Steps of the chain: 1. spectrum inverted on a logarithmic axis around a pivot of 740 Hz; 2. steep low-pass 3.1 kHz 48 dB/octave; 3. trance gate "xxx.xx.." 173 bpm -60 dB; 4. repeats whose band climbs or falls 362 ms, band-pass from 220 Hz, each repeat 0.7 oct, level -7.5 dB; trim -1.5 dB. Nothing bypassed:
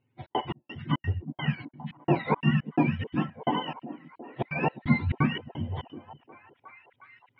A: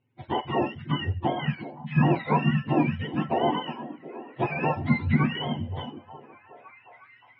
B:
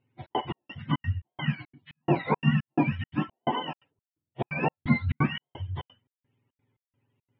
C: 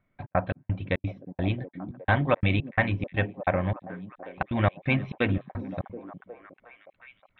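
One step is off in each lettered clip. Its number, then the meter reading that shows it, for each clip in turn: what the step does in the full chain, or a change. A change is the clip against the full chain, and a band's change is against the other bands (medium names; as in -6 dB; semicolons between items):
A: 3, 500 Hz band +2.0 dB; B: 4, echo-to-direct -15.5 dB to none; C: 1, 2 kHz band +5.0 dB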